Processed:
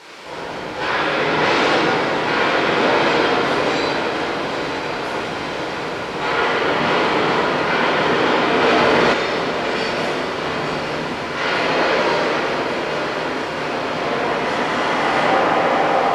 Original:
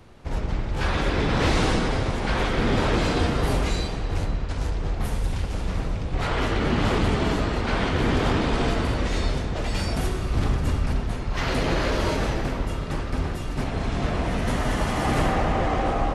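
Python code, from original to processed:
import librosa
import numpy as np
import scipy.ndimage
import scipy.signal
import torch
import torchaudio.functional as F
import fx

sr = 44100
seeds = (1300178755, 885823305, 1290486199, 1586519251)

y = fx.dmg_noise_colour(x, sr, seeds[0], colour='pink', level_db=-41.0)
y = fx.bandpass_edges(y, sr, low_hz=420.0, high_hz=4800.0)
y = fx.echo_diffused(y, sr, ms=948, feedback_pct=66, wet_db=-8)
y = fx.room_shoebox(y, sr, seeds[1], volume_m3=880.0, walls='mixed', distance_m=4.6)
y = fx.env_flatten(y, sr, amount_pct=100, at=(8.61, 9.12), fade=0.02)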